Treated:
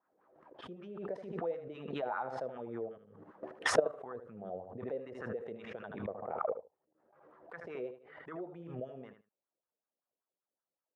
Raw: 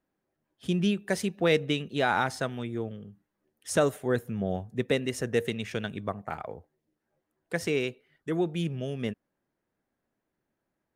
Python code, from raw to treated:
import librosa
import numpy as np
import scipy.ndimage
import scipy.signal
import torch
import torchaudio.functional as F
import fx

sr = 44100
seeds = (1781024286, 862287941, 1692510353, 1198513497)

p1 = fx.lowpass(x, sr, hz=2500.0, slope=6)
p2 = fx.low_shelf(p1, sr, hz=240.0, db=6.0)
p3 = fx.level_steps(p2, sr, step_db=19)
p4 = fx.wah_lfo(p3, sr, hz=5.2, low_hz=480.0, high_hz=1300.0, q=4.4)
p5 = p4 + fx.echo_feedback(p4, sr, ms=77, feedback_pct=15, wet_db=-10.0, dry=0)
p6 = fx.pre_swell(p5, sr, db_per_s=55.0)
y = p6 * librosa.db_to_amplitude(8.0)